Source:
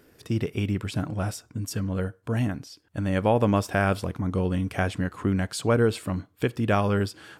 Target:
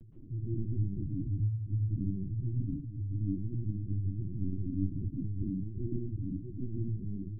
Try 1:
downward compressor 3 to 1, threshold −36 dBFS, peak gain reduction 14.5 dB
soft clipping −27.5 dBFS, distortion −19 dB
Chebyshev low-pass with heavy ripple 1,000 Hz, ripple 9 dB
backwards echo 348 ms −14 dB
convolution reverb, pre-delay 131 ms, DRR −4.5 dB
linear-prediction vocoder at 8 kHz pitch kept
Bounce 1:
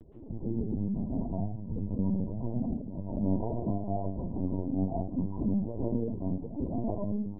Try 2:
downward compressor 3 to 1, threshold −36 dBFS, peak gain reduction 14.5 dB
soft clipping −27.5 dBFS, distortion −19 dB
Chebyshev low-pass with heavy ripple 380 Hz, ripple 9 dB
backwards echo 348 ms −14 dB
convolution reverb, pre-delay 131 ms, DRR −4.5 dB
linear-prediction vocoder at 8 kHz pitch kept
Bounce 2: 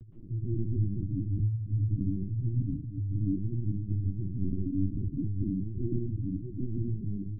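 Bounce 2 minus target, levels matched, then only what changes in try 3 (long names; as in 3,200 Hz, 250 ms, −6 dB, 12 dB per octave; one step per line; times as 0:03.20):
soft clipping: distortion −9 dB
change: soft clipping −36 dBFS, distortion −10 dB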